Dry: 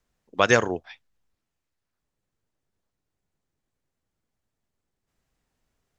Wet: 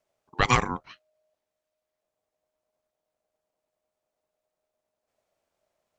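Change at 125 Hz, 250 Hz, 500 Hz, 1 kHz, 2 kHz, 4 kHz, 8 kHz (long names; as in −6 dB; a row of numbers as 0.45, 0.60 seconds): +3.0 dB, −3.5 dB, −10.5 dB, +1.0 dB, −4.0 dB, −1.5 dB, can't be measured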